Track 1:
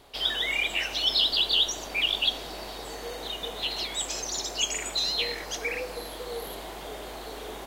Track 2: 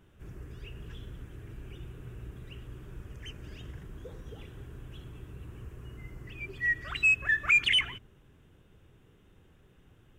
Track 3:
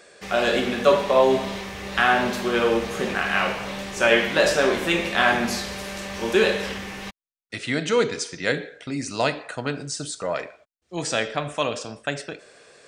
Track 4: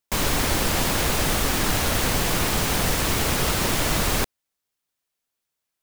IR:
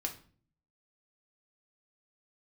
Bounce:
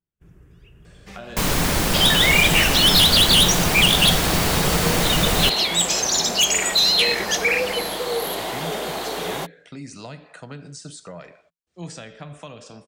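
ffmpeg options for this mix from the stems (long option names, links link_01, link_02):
-filter_complex "[0:a]aeval=exprs='0.282*sin(PI/2*2.82*val(0)/0.282)':channel_layout=same,highpass=frequency=290:poles=1,adelay=1800,volume=-0.5dB[link_01];[1:a]agate=range=-26dB:threshold=-50dB:ratio=16:detection=peak,volume=-6dB[link_02];[2:a]acrossover=split=190[link_03][link_04];[link_04]acompressor=threshold=-30dB:ratio=8[link_05];[link_03][link_05]amix=inputs=2:normalize=0,adelay=850,volume=-6dB[link_06];[3:a]adelay=1250,volume=1.5dB[link_07];[link_01][link_02][link_06][link_07]amix=inputs=4:normalize=0,equalizer=frequency=170:width=5.8:gain=10"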